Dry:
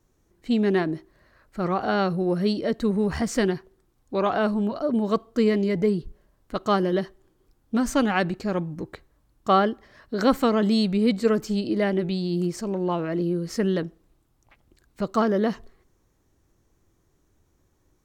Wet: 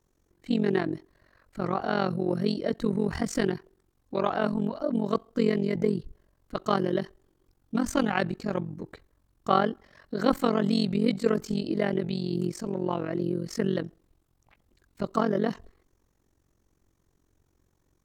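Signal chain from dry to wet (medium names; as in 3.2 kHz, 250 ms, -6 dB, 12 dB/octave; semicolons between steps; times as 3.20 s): AM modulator 45 Hz, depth 80%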